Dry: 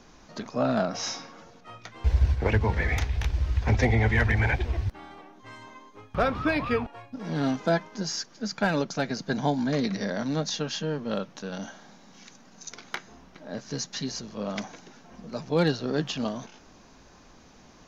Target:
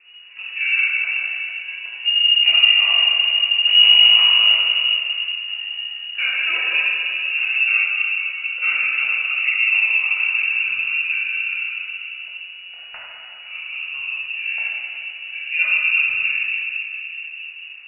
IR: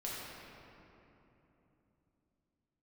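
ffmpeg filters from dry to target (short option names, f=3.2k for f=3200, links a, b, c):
-filter_complex "[0:a]tiltshelf=f=880:g=6.5,asettb=1/sr,asplit=3[a][b][c];[a]atrim=end=3.594[d];[b]atrim=start=3.59:end=6.18,asetpts=PTS-STARTPTS,afade=t=in:d=0.004:c=qsin,afade=t=out:st=2.586:d=0.004:c=qsin,aeval=exprs='max(val(0),0)':c=same[e];[c]atrim=start=6.176[f];[d][e]acrossfade=d=0.004:c1=hsin:c2=qsin[g];[g][f]acrossfade=d=0.004:c1=qsin:c2=hsin[h];[1:a]atrim=start_sample=2205[i];[h][i]afir=irnorm=-1:irlink=0,lowpass=f=2.5k:t=q:w=0.5098,lowpass=f=2.5k:t=q:w=0.6013,lowpass=f=2.5k:t=q:w=0.9,lowpass=f=2.5k:t=q:w=2.563,afreqshift=-2900"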